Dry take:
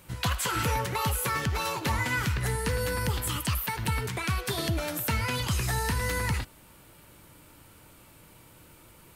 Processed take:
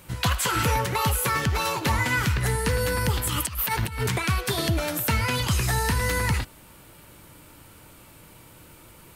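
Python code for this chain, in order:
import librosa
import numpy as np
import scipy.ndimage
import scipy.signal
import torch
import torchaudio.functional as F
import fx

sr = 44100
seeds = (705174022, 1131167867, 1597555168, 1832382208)

y = fx.over_compress(x, sr, threshold_db=-32.0, ratio=-0.5, at=(3.28, 4.17), fade=0.02)
y = F.gain(torch.from_numpy(y), 4.5).numpy()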